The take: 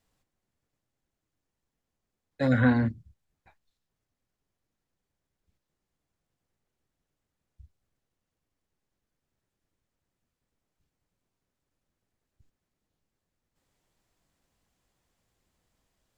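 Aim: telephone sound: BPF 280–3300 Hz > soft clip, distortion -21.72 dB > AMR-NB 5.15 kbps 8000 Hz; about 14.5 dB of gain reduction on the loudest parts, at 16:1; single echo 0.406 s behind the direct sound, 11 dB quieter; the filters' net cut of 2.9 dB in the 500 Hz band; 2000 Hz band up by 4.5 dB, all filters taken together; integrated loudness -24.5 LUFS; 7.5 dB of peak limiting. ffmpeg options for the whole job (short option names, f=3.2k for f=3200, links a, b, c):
-af "equalizer=f=500:t=o:g=-3,equalizer=f=2k:t=o:g=7,acompressor=threshold=-31dB:ratio=16,alimiter=level_in=5.5dB:limit=-24dB:level=0:latency=1,volume=-5.5dB,highpass=280,lowpass=3.3k,aecho=1:1:406:0.282,asoftclip=threshold=-31.5dB,volume=23dB" -ar 8000 -c:a libopencore_amrnb -b:a 5150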